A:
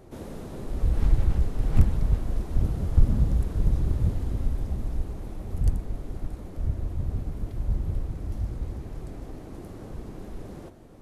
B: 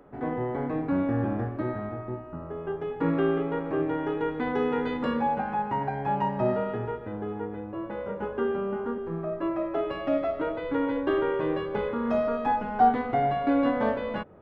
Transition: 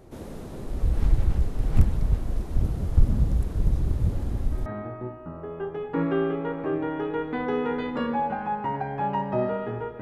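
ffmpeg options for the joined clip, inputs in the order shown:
-filter_complex "[1:a]asplit=2[s0][s1];[0:a]apad=whole_dur=10.01,atrim=end=10.01,atrim=end=4.662[s2];[s1]atrim=start=1.728:end=7.08[s3];[s0]atrim=start=1.19:end=1.73,asetpts=PTS-STARTPTS,volume=0.188,afade=t=in:d=0.004:c=hsin,afade=t=out:st=0.536:d=0.004:c=hsin,adelay=4120[s4];[s2][s3]acrossfade=d=0.004:c1=hsin:c2=hsin[s5];[s5][s4]amix=inputs=2:normalize=0"

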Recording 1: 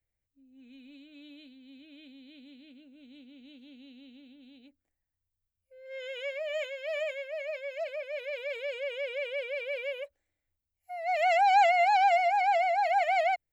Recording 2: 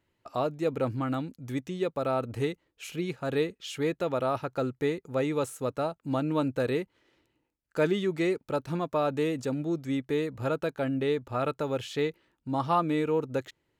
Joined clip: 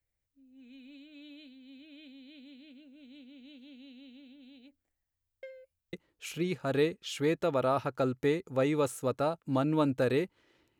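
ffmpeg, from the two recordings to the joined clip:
-filter_complex "[0:a]apad=whole_dur=10.79,atrim=end=10.79,asplit=2[s0][s1];[s0]atrim=end=5.432[s2];[s1]atrim=start=5.428:end=5.932,asetpts=PTS-STARTPTS,areverse[s3];[1:a]atrim=start=2.508:end=7.37[s4];[s2][s3]acrossfade=d=0.004:c1=hsin:c2=hsin[s5];[s5][s4]acrossfade=d=0.004:c1=hsin:c2=hsin"

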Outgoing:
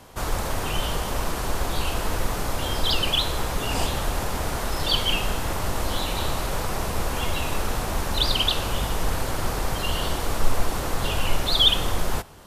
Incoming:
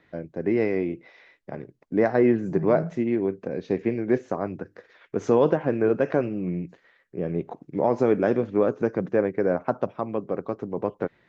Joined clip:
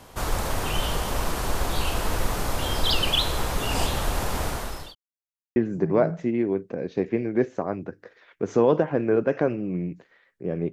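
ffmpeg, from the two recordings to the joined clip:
-filter_complex "[0:a]apad=whole_dur=10.72,atrim=end=10.72,asplit=2[s0][s1];[s0]atrim=end=4.95,asetpts=PTS-STARTPTS,afade=t=out:st=4.43:d=0.52[s2];[s1]atrim=start=4.95:end=5.56,asetpts=PTS-STARTPTS,volume=0[s3];[1:a]atrim=start=2.29:end=7.45,asetpts=PTS-STARTPTS,afade=t=in:d=0.004:c=hsin[s4];[s2][s3][s4]concat=n=3:v=0:a=1"

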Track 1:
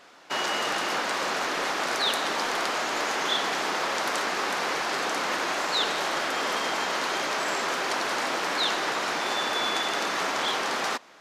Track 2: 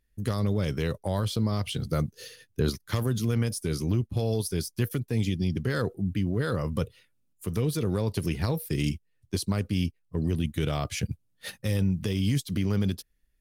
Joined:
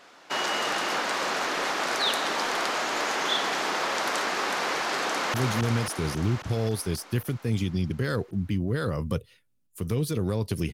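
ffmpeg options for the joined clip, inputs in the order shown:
-filter_complex "[0:a]apad=whole_dur=10.73,atrim=end=10.73,atrim=end=5.342[s0];[1:a]atrim=start=2.998:end=8.39[s1];[s0][s1]acrossfade=d=0.004:c1=hsin:c2=hsin,asplit=2[s2][s3];[s3]afade=t=in:st=5.08:d=0.01,afade=t=out:st=5.34:d=0.01,aecho=0:1:270|540|810|1080|1350|1620|1890|2160|2430|2700|2970|3240:0.749894|0.524926|0.367448|0.257214|0.18005|0.126035|0.0882243|0.061757|0.0432299|0.0302609|0.0211827|0.0148279[s4];[s2][s4]amix=inputs=2:normalize=0"

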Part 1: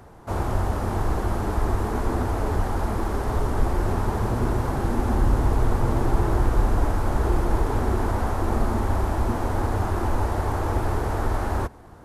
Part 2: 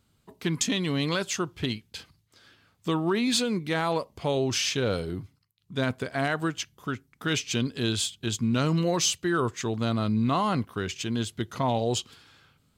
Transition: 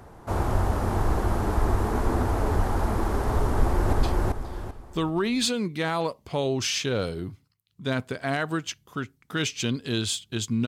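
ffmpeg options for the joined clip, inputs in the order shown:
-filter_complex "[0:a]apad=whole_dur=10.67,atrim=end=10.67,atrim=end=3.932[s0];[1:a]atrim=start=1.838:end=8.58[s1];[s0][s1]acrossfade=d=0.004:c1=hsin:c2=hsin,asplit=2[s2][s3];[s3]afade=t=in:st=3.5:d=0.01,afade=t=out:st=3.93:d=0.01,aecho=0:1:390|780|1170|1560:0.891251|0.267375|0.0802126|0.0240638[s4];[s2][s4]amix=inputs=2:normalize=0"

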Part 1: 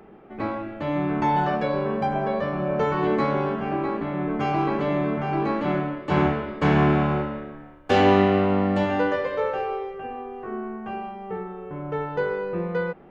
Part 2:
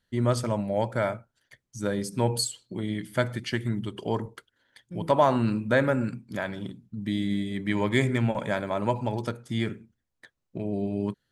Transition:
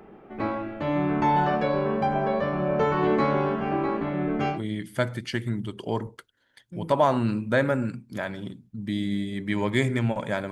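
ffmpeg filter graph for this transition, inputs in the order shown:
-filter_complex "[0:a]asettb=1/sr,asplit=3[s0][s1][s2];[s0]atrim=end=4.094[s3];[s1]atrim=start=4.09:end=4.6,asetpts=PTS-STARTPTS,afade=t=in:d=0.004:c=qsin,afade=t=out:st=0.506:d=0.004:c=qsin,equalizer=f=1000:w=4.2:g=-9[s4];[s2]atrim=start=4.596[s5];[s3][s4]acrossfade=d=0.004:c1=hsin:c2=qsin[s6];[s6][s5]acrossfade=d=0.004:c1=qsin:c2=hsin,apad=whole_dur=10.51,atrim=end=10.51,atrim=end=4.6,asetpts=PTS-STARTPTS[s7];[1:a]atrim=start=2.67:end=8.7,asetpts=PTS-STARTPTS[s8];[s7][s8]acrossfade=d=0.12:c1=tri:c2=tri"

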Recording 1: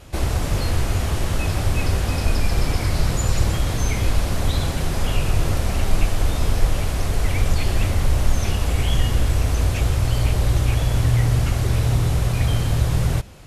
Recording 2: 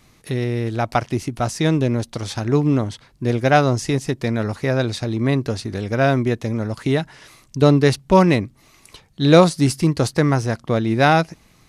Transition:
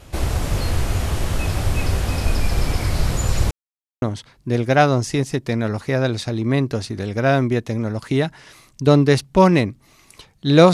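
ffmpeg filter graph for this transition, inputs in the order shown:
-filter_complex "[0:a]apad=whole_dur=10.73,atrim=end=10.73,asplit=2[s0][s1];[s0]atrim=end=3.51,asetpts=PTS-STARTPTS,afade=t=out:st=3.506:d=0.004:c=hsin[s2];[s1]atrim=start=3.51:end=4.02,asetpts=PTS-STARTPTS,volume=0[s3];[1:a]atrim=start=2.77:end=9.48,asetpts=PTS-STARTPTS,afade=t=in:d=0.004:c=hsin[s4];[s2][s3][s4]concat=n=3:v=0:a=1"

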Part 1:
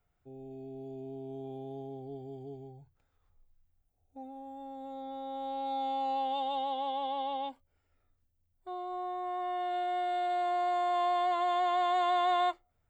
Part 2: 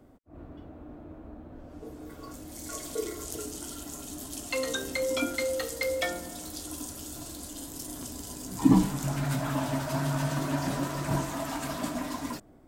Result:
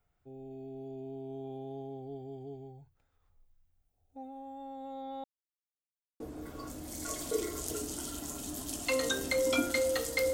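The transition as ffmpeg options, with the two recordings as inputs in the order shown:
-filter_complex "[0:a]apad=whole_dur=10.33,atrim=end=10.33,asplit=2[s0][s1];[s0]atrim=end=5.24,asetpts=PTS-STARTPTS,afade=t=out:st=5.236:d=0.004:c=hsin[s2];[s1]atrim=start=5.24:end=6.2,asetpts=PTS-STARTPTS,volume=0[s3];[1:a]atrim=start=1.84:end=5.97,asetpts=PTS-STARTPTS,afade=t=in:d=0.004:c=hsin[s4];[s2][s3][s4]concat=n=3:v=0:a=1"

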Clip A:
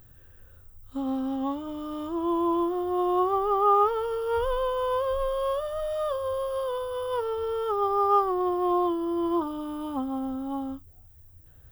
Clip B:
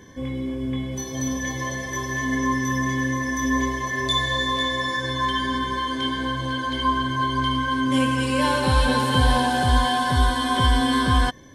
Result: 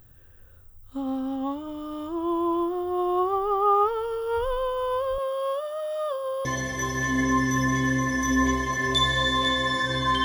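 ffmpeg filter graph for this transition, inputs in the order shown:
-filter_complex "[0:a]asettb=1/sr,asplit=3[s0][s1][s2];[s0]atrim=end=5.184[s3];[s1]atrim=start=5.18:end=6.45,asetpts=PTS-STARTPTS,afade=t=in:d=0.004:c=qsin,afade=t=out:st=1.266:d=0.004:c=qsin,highpass=270[s4];[s2]atrim=start=6.446[s5];[s3][s4]acrossfade=d=0.004:c1=hsin:c2=qsin[s6];[s6][s5]acrossfade=d=0.004:c1=qsin:c2=hsin,apad=whole_dur=10.24,atrim=end=10.24,atrim=end=6.452[s7];[1:a]atrim=start=1.588:end=5.38[s8];[s7][s8]acrossfade=d=0.004:c1=hsin:c2=hsin"

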